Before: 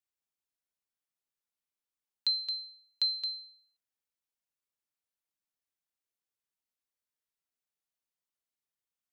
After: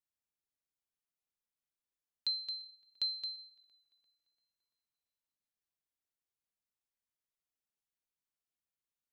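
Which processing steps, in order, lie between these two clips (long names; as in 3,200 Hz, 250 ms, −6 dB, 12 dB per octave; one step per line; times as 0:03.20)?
low-shelf EQ 210 Hz +7 dB
on a send: tape delay 342 ms, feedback 68%, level −23.5 dB, low-pass 3,100 Hz
on the sum: level −5.5 dB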